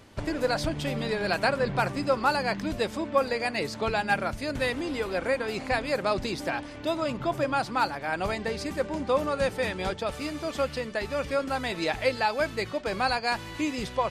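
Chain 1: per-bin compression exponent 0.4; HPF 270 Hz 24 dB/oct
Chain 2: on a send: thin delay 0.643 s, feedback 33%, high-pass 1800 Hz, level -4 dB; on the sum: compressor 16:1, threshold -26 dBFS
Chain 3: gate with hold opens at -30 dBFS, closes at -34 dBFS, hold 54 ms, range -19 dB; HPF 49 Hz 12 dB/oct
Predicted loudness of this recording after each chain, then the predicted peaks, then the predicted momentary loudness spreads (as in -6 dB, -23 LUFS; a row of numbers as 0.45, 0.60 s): -21.0, -31.5, -28.5 LUFS; -6.0, -15.5, -10.0 dBFS; 3, 2, 5 LU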